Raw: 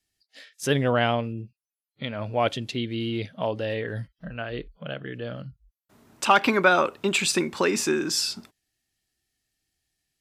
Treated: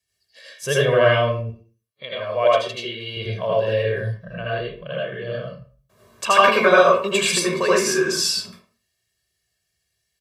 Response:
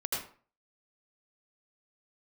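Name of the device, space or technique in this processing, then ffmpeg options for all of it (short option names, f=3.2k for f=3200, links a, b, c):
microphone above a desk: -filter_complex "[0:a]highpass=64,asettb=1/sr,asplit=3[a][b][c];[a]atrim=end=1.404[d];[b]atrim=start=1.4:end=3.17,asetpts=PTS-STARTPTS,afade=t=in:d=0.004:c=qsin,afade=t=out:st=1.766:d=0.004:c=qsin,bass=f=250:g=-15,treble=f=4k:g=-2[e];[c]atrim=start=3.166[f];[d][e]acrossfade=d=0.004:c1=hsin:c2=qsin[g];[g][f]acrossfade=d=0.004:c1=qsin:c2=hsin,aecho=1:1:1.8:0.84[h];[1:a]atrim=start_sample=2205[i];[h][i]afir=irnorm=-1:irlink=0,volume=-1.5dB"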